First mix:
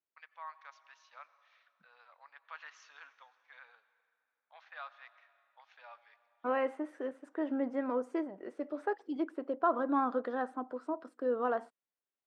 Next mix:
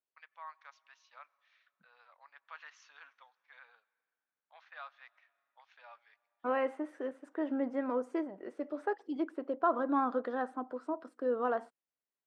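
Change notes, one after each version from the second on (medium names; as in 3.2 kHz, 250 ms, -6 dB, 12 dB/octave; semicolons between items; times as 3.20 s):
first voice: send -10.5 dB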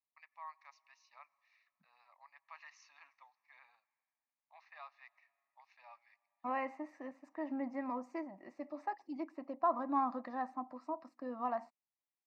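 master: add static phaser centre 2.2 kHz, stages 8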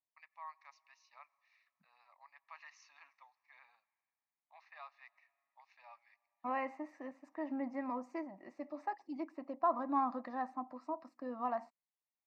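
no change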